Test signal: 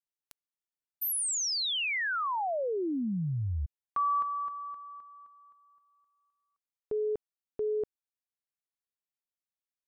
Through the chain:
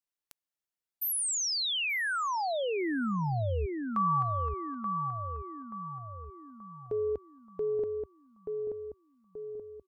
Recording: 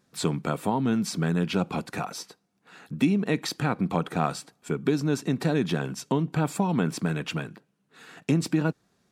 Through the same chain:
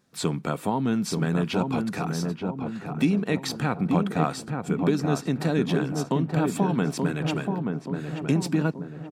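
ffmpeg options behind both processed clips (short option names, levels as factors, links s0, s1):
-filter_complex "[0:a]asplit=2[s0][s1];[s1]adelay=880,lowpass=f=1100:p=1,volume=0.668,asplit=2[s2][s3];[s3]adelay=880,lowpass=f=1100:p=1,volume=0.55,asplit=2[s4][s5];[s5]adelay=880,lowpass=f=1100:p=1,volume=0.55,asplit=2[s6][s7];[s7]adelay=880,lowpass=f=1100:p=1,volume=0.55,asplit=2[s8][s9];[s9]adelay=880,lowpass=f=1100:p=1,volume=0.55,asplit=2[s10][s11];[s11]adelay=880,lowpass=f=1100:p=1,volume=0.55,asplit=2[s12][s13];[s13]adelay=880,lowpass=f=1100:p=1,volume=0.55,asplit=2[s14][s15];[s15]adelay=880,lowpass=f=1100:p=1,volume=0.55[s16];[s0][s2][s4][s6][s8][s10][s12][s14][s16]amix=inputs=9:normalize=0"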